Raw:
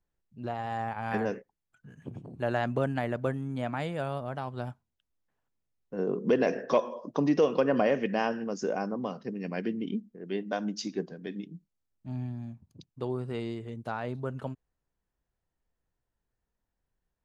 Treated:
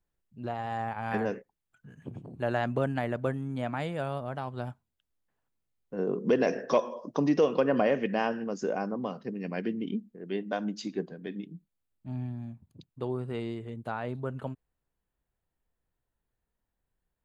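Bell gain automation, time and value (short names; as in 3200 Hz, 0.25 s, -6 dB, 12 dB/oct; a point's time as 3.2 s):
bell 5600 Hz 0.38 oct
6.04 s -4 dB
6.5 s +4 dB
7.16 s +4 dB
7.66 s -5.5 dB
10.4 s -5.5 dB
11.13 s -13.5 dB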